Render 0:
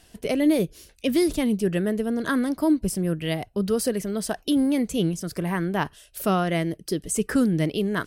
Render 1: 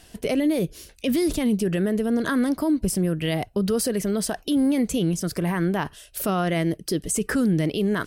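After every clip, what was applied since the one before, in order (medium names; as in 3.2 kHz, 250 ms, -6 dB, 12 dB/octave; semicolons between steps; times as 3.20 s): peak limiter -19.5 dBFS, peak gain reduction 7.5 dB; trim +4.5 dB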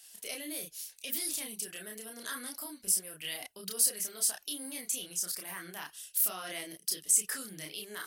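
differentiator; chorus voices 6, 0.64 Hz, delay 30 ms, depth 3.7 ms; trim +4 dB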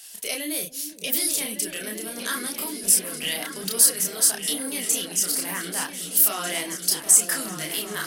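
in parallel at -8 dB: saturation -20.5 dBFS, distortion -16 dB; on the sum: delay with an opening low-pass 386 ms, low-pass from 200 Hz, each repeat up 2 oct, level -3 dB; trim +8 dB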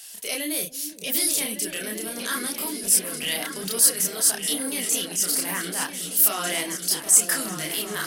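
transient shaper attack -6 dB, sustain -1 dB; trim +2 dB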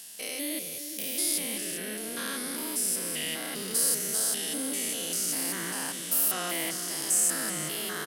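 spectrogram pixelated in time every 200 ms; delay 378 ms -12.5 dB; trim -2.5 dB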